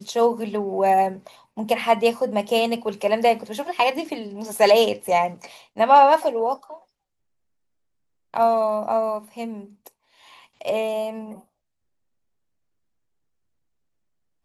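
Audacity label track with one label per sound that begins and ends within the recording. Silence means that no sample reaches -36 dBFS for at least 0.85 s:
8.340000	11.390000	sound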